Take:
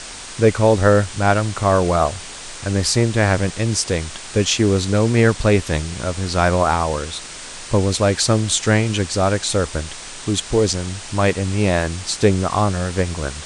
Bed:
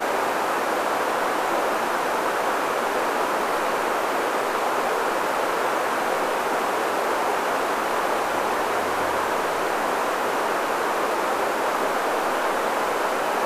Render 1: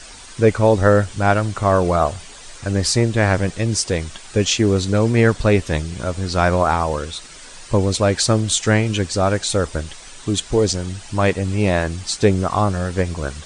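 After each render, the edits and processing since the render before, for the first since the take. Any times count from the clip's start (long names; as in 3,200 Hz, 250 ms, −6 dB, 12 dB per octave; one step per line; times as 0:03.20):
broadband denoise 9 dB, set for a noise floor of −34 dBFS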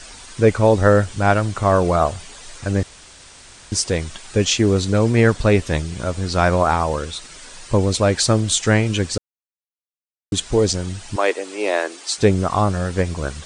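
0:02.83–0:03.72: fill with room tone
0:09.18–0:10.32: silence
0:11.16–0:12.18: Butterworth high-pass 320 Hz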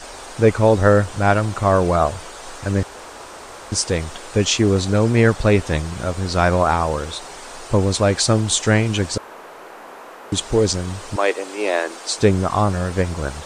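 mix in bed −15 dB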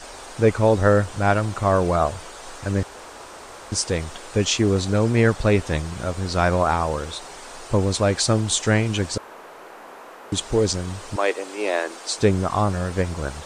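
level −3 dB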